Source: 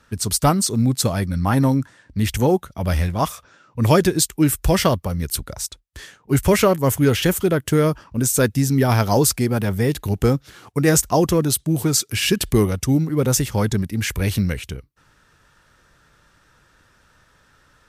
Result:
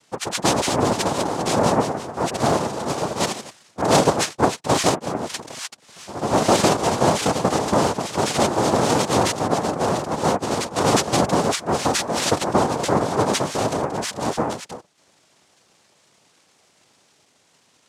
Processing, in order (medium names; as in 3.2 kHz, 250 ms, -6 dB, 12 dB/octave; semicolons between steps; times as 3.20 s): ever faster or slower copies 255 ms, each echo +1 st, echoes 3, each echo -6 dB; noise-vocoded speech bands 2; trim -2.5 dB